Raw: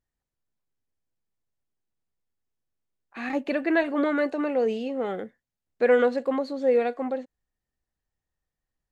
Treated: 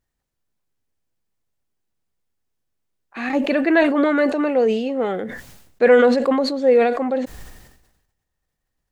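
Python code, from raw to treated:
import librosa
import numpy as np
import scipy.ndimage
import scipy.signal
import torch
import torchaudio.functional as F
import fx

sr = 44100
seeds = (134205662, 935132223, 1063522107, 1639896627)

y = fx.sustainer(x, sr, db_per_s=56.0)
y = y * 10.0 ** (6.5 / 20.0)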